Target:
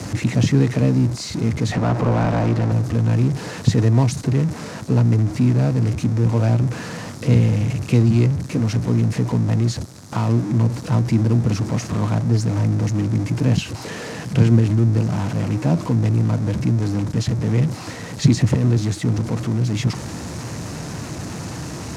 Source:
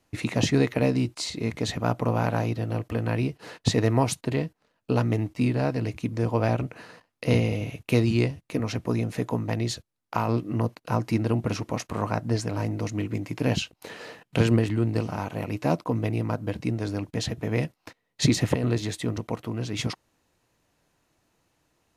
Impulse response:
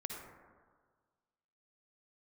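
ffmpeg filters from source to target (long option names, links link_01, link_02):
-filter_complex "[0:a]aeval=exprs='val(0)+0.5*0.0668*sgn(val(0))':channel_layout=same,acrossover=split=320|670|3800[link_01][link_02][link_03][link_04];[link_03]adynamicsmooth=sensitivity=5:basefreq=980[link_05];[link_01][link_02][link_05][link_04]amix=inputs=4:normalize=0,highpass=110,lowpass=5400,asettb=1/sr,asplit=3[link_06][link_07][link_08];[link_06]atrim=end=1.724[link_09];[link_07]atrim=start=1.72:end=2.72,asetpts=PTS-STARTPTS,afade=type=in:duration=0.004:curve=qsin,afade=type=out:start_time=0.996:duration=0.004:curve=qsin,asplit=2[link_10][link_11];[link_11]highpass=frequency=720:poles=1,volume=19dB,asoftclip=type=tanh:threshold=-8.5dB[link_12];[link_10][link_12]amix=inputs=2:normalize=0,lowpass=frequency=1100:poles=1,volume=-6dB[link_13];[link_08]atrim=start=2.716[link_14];[link_09][link_13]acrossfade=duration=0.004:curve1=hsin:curve2=qsin[link_15];[link_15][link_14]acrossfade=duration=0.004:curve1=qsin:curve2=hsin,bass=frequency=250:gain=14,treble=frequency=4000:gain=7,volume=-3.5dB"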